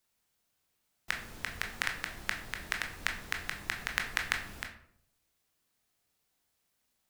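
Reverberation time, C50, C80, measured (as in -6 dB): 0.65 s, 8.5 dB, 12.0 dB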